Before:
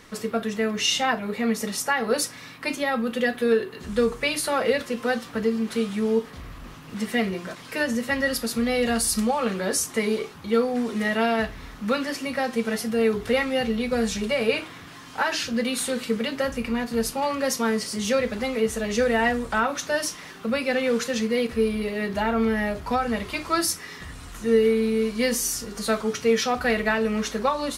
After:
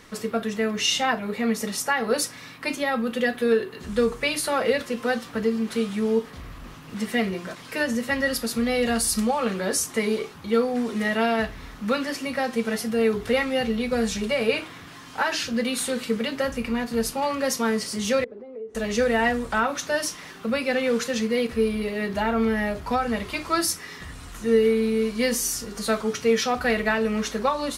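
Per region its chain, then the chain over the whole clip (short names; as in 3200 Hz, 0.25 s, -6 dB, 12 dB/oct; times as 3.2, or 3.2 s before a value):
18.24–18.75 compressor 12:1, threshold -28 dBFS + band-pass 410 Hz, Q 3.2 + air absorption 56 m
whole clip: dry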